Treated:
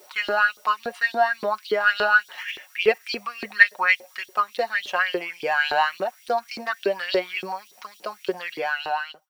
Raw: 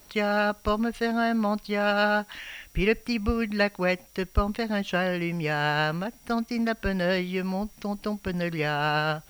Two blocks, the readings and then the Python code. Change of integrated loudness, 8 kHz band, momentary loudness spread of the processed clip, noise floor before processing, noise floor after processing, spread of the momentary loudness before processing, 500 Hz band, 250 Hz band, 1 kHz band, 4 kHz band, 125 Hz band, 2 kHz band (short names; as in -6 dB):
+3.5 dB, n/a, 13 LU, -54 dBFS, -54 dBFS, 7 LU, +1.0 dB, -12.5 dB, +4.5 dB, +3.0 dB, under -20 dB, +8.0 dB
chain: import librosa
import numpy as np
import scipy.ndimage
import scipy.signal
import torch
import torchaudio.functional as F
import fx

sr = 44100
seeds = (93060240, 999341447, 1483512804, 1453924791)

p1 = fx.fade_out_tail(x, sr, length_s=0.92)
p2 = fx.level_steps(p1, sr, step_db=20)
p3 = p1 + F.gain(torch.from_numpy(p2), -2.0).numpy()
p4 = p3 + 0.58 * np.pad(p3, (int(5.5 * sr / 1000.0), 0))[:len(p3)]
p5 = fx.filter_lfo_highpass(p4, sr, shape='saw_up', hz=3.5, low_hz=380.0, high_hz=4100.0, q=4.7)
y = F.gain(torch.from_numpy(p5), -3.0).numpy()